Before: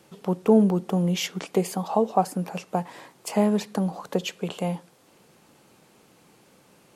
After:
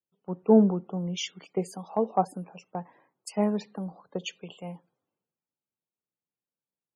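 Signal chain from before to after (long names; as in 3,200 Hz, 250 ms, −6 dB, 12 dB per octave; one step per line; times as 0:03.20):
spectral peaks only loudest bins 64
multiband upward and downward expander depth 100%
level −9 dB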